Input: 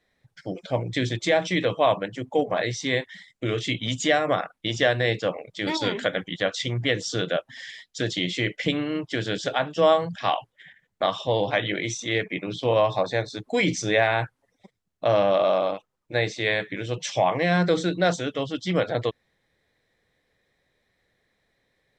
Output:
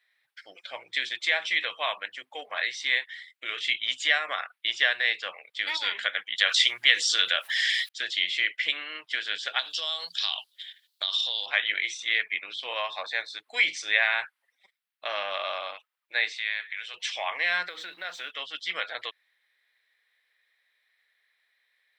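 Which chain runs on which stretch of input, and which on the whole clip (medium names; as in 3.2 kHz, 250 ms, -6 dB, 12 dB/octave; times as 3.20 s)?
6.38–7.89 s: treble shelf 3.7 kHz +11.5 dB + level flattener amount 50%
9.59–11.46 s: resonant high shelf 2.9 kHz +13 dB, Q 3 + compression 10:1, threshold -23 dBFS
16.35–16.94 s: high-pass 740 Hz + compression 2:1, threshold -32 dBFS
17.68–18.31 s: companding laws mixed up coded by mu + low-pass 3.4 kHz 6 dB/octave + compression, threshold -24 dBFS
whole clip: Chebyshev high-pass 2 kHz, order 2; peaking EQ 6.6 kHz -12.5 dB 0.9 oct; trim +5 dB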